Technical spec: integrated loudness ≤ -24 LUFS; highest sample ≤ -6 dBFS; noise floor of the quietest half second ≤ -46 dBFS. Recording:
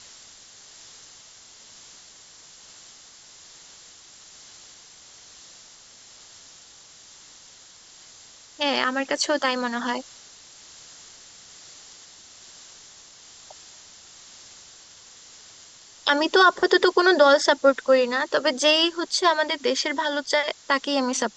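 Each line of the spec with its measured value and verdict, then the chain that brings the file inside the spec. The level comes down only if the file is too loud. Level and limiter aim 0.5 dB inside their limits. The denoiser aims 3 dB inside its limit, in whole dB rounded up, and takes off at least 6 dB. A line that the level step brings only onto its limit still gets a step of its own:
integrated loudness -21.0 LUFS: fail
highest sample -5.5 dBFS: fail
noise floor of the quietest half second -49 dBFS: OK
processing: gain -3.5 dB

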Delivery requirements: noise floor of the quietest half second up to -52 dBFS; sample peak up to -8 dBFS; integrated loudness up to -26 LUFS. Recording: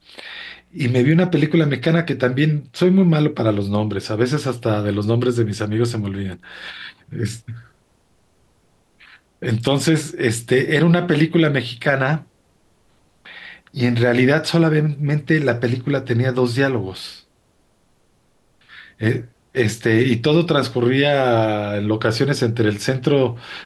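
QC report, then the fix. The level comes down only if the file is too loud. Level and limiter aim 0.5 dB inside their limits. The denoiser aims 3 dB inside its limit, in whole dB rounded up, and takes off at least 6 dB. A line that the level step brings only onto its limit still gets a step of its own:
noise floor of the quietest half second -60 dBFS: OK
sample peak -5.0 dBFS: fail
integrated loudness -18.5 LUFS: fail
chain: gain -8 dB

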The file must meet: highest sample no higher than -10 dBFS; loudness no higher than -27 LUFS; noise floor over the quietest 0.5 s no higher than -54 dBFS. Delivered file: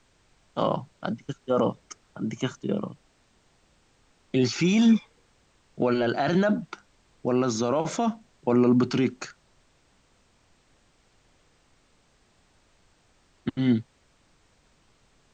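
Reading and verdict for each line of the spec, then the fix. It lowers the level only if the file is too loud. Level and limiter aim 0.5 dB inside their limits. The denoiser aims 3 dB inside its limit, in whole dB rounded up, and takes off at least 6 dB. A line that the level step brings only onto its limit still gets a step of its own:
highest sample -11.0 dBFS: OK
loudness -26.0 LUFS: fail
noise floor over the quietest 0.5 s -64 dBFS: OK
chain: gain -1.5 dB

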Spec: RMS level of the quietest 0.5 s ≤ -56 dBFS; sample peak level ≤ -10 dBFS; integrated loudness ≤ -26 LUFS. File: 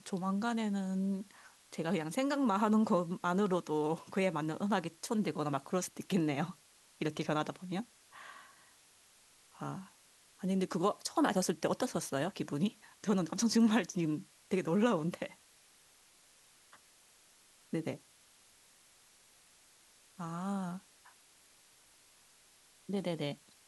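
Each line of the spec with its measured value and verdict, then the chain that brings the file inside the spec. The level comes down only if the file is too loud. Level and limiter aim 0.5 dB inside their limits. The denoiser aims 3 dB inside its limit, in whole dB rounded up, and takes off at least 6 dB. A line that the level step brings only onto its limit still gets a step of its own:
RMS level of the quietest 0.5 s -64 dBFS: OK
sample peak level -16.0 dBFS: OK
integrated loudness -34.5 LUFS: OK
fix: none

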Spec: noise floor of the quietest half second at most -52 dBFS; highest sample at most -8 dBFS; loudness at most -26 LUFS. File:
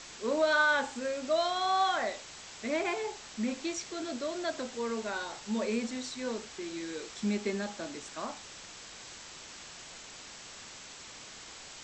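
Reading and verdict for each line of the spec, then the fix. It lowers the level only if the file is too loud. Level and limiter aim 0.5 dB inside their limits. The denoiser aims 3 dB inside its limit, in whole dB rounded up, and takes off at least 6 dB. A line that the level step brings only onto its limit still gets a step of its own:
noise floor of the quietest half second -48 dBFS: fail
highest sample -16.0 dBFS: OK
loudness -33.0 LUFS: OK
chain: denoiser 7 dB, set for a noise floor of -48 dBFS

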